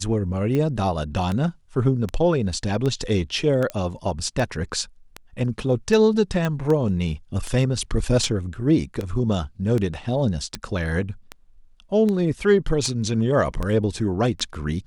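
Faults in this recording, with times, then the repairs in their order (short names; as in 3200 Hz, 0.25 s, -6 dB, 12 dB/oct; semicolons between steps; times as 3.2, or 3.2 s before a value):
tick 78 rpm -14 dBFS
3.7 pop -14 dBFS
6.45 pop -12 dBFS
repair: de-click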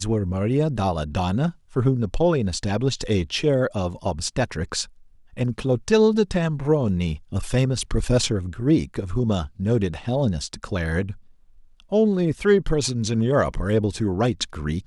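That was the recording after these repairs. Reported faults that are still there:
none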